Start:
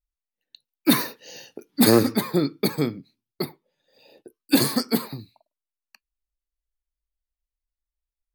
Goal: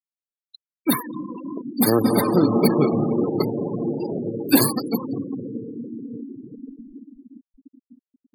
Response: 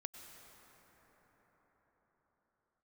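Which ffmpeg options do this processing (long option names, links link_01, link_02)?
-filter_complex "[0:a]equalizer=frequency=1000:width_type=o:width=0.67:gain=4,equalizer=frequency=4000:width_type=o:width=0.67:gain=-4,equalizer=frequency=16000:width_type=o:width=0.67:gain=9,acompressor=mode=upward:threshold=-23dB:ratio=2.5[link_01];[1:a]atrim=start_sample=2205,asetrate=25137,aresample=44100[link_02];[link_01][link_02]afir=irnorm=-1:irlink=0,asettb=1/sr,asplit=3[link_03][link_04][link_05];[link_03]atrim=end=2.044[link_06];[link_04]atrim=start=2.04:end=4.72,asetpts=PTS-STARTPTS,afade=type=in:duration=0.004:curve=qsin,afade=type=out:start_time=2.676:duration=0.004:curve=qsin,acontrast=33[link_07];[link_05]atrim=start=4.716[link_08];[link_06][link_07]acrossfade=duration=0.004:curve1=hsin:curve2=qsin[link_09];[link_09][link_08]acrossfade=duration=0.004:curve1=qsin:curve2=hsin,afftfilt=real='re*gte(hypot(re,im),0.0794)':imag='im*gte(hypot(re,im),0.0794)':win_size=1024:overlap=0.75"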